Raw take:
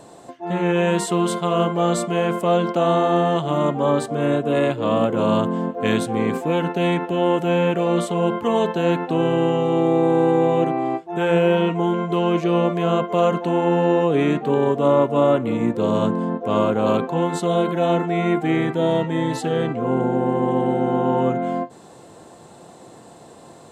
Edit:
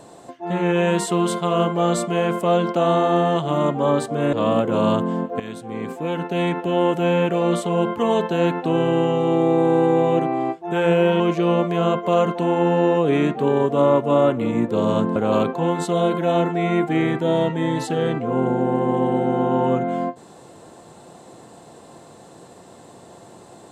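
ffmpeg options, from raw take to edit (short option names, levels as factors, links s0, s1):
-filter_complex "[0:a]asplit=5[s0][s1][s2][s3][s4];[s0]atrim=end=4.332[s5];[s1]atrim=start=4.778:end=5.85,asetpts=PTS-STARTPTS,afade=t=out:st=1.068:d=0.004:c=hsin:silence=0.149624[s6];[s2]atrim=start=5.85:end=11.652,asetpts=PTS-STARTPTS,afade=t=in:d=1.29:silence=0.149624[s7];[s3]atrim=start=12.258:end=16.222[s8];[s4]atrim=start=16.698[s9];[s6][s7]concat=n=2:v=0:a=1[s10];[s5][s10]acrossfade=d=0.004:c1=hsin:c2=hsin[s11];[s11][s8]acrossfade=d=0.004:c1=hsin:c2=hsin[s12];[s12][s9]acrossfade=d=0.004:c1=hsin:c2=hsin"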